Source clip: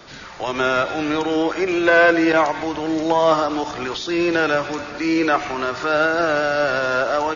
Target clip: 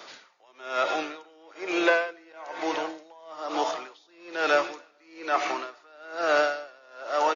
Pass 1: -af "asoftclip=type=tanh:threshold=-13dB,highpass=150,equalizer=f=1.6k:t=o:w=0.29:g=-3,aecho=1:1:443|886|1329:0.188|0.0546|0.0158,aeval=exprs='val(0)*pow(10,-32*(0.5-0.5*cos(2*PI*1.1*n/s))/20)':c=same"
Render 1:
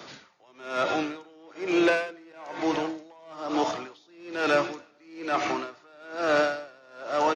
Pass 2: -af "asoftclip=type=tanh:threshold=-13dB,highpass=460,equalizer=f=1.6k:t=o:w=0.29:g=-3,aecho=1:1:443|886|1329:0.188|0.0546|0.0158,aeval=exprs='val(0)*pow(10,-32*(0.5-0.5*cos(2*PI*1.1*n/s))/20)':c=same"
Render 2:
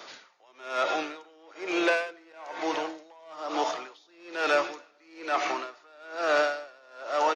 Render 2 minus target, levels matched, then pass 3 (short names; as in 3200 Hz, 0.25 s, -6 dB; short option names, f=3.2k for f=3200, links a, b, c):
soft clip: distortion +13 dB
-af "asoftclip=type=tanh:threshold=-3.5dB,highpass=460,equalizer=f=1.6k:t=o:w=0.29:g=-3,aecho=1:1:443|886|1329:0.188|0.0546|0.0158,aeval=exprs='val(0)*pow(10,-32*(0.5-0.5*cos(2*PI*1.1*n/s))/20)':c=same"